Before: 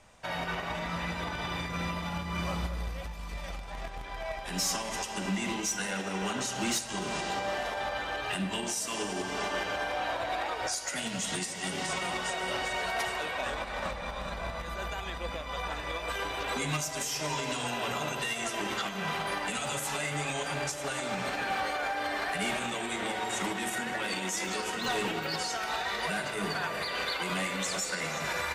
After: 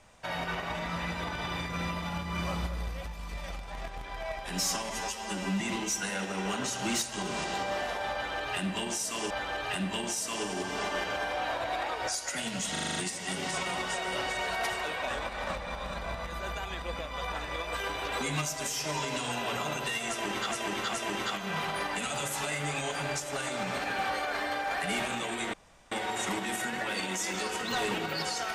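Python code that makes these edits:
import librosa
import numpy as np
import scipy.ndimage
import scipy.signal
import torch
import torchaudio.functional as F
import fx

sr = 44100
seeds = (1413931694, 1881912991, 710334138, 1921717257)

y = fx.edit(x, sr, fx.stretch_span(start_s=4.9, length_s=0.47, factor=1.5),
    fx.repeat(start_s=7.9, length_s=1.17, count=2),
    fx.stutter(start_s=11.31, slice_s=0.04, count=7),
    fx.repeat(start_s=18.45, length_s=0.42, count=3),
    fx.reverse_span(start_s=21.84, length_s=0.42),
    fx.insert_room_tone(at_s=23.05, length_s=0.38), tone=tone)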